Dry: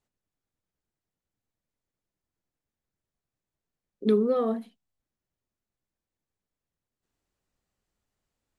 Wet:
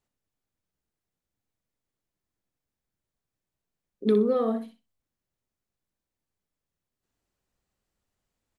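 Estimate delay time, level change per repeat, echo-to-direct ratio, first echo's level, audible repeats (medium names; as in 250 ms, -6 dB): 62 ms, -15.5 dB, -9.0 dB, -9.0 dB, 2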